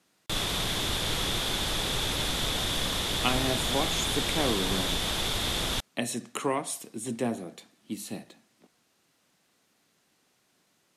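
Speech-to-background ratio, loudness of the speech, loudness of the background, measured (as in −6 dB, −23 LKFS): −5.0 dB, −33.0 LKFS, −28.0 LKFS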